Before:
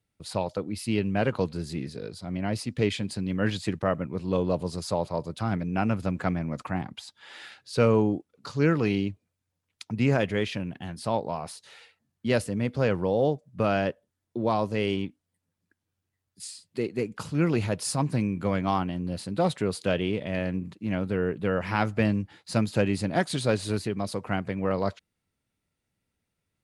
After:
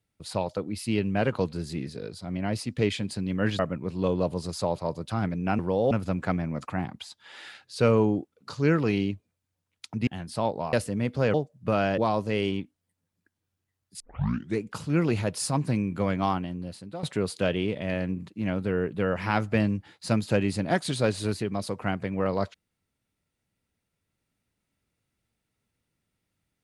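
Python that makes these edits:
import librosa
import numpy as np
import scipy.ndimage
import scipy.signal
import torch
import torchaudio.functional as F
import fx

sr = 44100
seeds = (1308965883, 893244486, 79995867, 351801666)

y = fx.edit(x, sr, fx.cut(start_s=3.59, length_s=0.29),
    fx.cut(start_s=10.04, length_s=0.72),
    fx.cut(start_s=11.42, length_s=0.91),
    fx.move(start_s=12.94, length_s=0.32, to_s=5.88),
    fx.cut(start_s=13.9, length_s=0.53),
    fx.tape_start(start_s=16.45, length_s=0.6),
    fx.fade_out_to(start_s=18.72, length_s=0.76, floor_db=-16.0), tone=tone)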